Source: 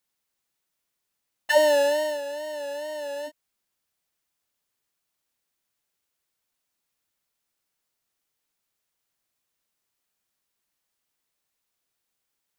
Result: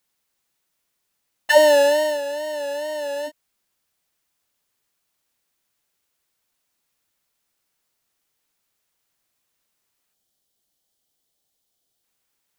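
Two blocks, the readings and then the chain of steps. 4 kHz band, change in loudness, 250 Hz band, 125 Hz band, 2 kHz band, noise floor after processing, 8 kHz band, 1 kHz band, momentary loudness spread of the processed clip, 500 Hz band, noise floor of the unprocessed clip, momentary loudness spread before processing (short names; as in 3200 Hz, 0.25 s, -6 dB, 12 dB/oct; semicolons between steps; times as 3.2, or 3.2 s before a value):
+5.5 dB, +5.5 dB, +5.5 dB, n/a, +5.5 dB, -76 dBFS, +5.5 dB, +5.5 dB, 16 LU, +5.5 dB, -81 dBFS, 16 LU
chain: spectral gain 10.14–12.03, 840–2900 Hz -8 dB; gain +5.5 dB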